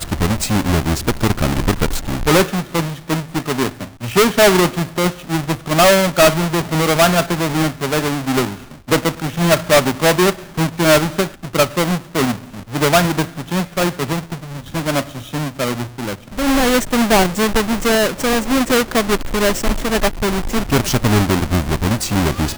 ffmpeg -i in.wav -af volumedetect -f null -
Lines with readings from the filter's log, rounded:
mean_volume: -16.8 dB
max_volume: -5.0 dB